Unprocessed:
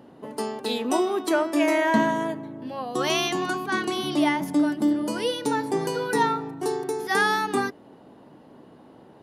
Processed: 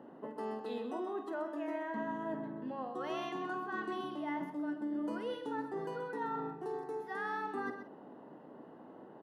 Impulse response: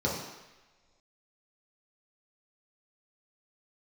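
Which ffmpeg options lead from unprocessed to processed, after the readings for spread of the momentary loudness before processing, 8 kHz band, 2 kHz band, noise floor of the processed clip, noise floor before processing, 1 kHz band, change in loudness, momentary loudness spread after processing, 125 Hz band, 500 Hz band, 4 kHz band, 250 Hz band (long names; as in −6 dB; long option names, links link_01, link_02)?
9 LU, below −30 dB, −16.5 dB, −54 dBFS, −51 dBFS, −13.5 dB, −14.5 dB, 16 LU, −15.5 dB, −13.5 dB, −23.0 dB, −14.5 dB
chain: -filter_complex "[0:a]acrossover=split=170 2300:gain=0.158 1 0.112[link_01][link_02][link_03];[link_01][link_02][link_03]amix=inputs=3:normalize=0,areverse,acompressor=threshold=-33dB:ratio=10,areverse,asuperstop=centerf=2300:order=4:qfactor=7.7,asplit=2[link_04][link_05];[link_05]adelay=50,volume=-11.5dB[link_06];[link_04][link_06]amix=inputs=2:normalize=0,aecho=1:1:129:0.335,volume=-3dB"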